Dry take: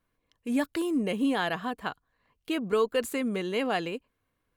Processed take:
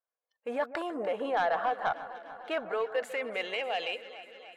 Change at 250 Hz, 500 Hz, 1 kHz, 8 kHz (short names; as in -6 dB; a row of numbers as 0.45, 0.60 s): -14.0 dB, -1.5 dB, +3.0 dB, under -10 dB